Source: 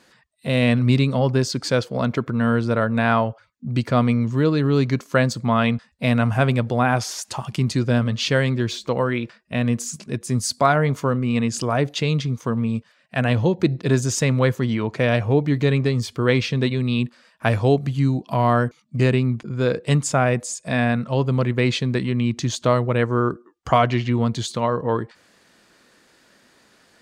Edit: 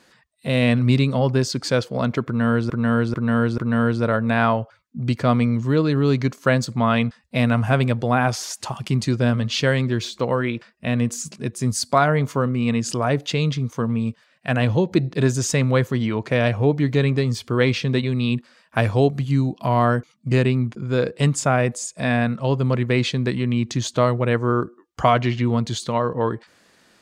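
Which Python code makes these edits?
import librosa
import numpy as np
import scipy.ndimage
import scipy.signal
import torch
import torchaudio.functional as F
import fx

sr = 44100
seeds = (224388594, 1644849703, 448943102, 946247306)

y = fx.edit(x, sr, fx.repeat(start_s=2.26, length_s=0.44, count=4), tone=tone)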